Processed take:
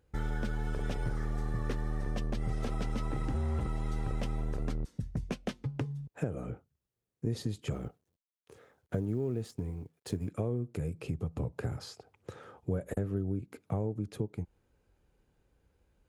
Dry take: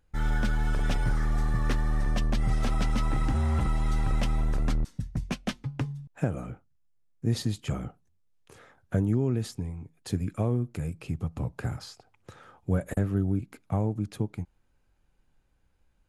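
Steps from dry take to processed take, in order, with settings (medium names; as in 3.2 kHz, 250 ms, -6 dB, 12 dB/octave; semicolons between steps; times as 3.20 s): 7.72–10.31 s: companding laws mixed up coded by A; high-pass 44 Hz; peaking EQ 440 Hz +9 dB 0.78 oct; compression 2.5:1, threshold -34 dBFS, peak gain reduction 10.5 dB; bass shelf 200 Hz +4.5 dB; trim -1.5 dB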